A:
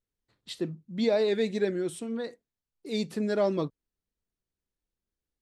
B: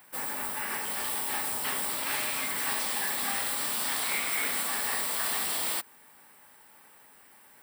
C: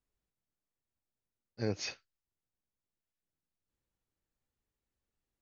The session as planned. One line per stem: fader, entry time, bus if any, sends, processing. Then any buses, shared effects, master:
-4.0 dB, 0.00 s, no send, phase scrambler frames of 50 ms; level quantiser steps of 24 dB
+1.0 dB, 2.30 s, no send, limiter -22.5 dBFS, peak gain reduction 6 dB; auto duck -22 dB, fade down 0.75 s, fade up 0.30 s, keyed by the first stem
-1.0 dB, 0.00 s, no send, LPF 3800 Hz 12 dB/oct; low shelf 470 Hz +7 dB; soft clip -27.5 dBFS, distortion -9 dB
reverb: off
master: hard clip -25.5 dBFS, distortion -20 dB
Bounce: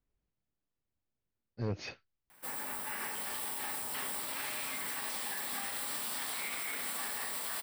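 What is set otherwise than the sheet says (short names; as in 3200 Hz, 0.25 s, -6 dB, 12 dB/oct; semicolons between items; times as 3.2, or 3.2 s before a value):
stem A: muted; stem B +1.0 dB -> -5.5 dB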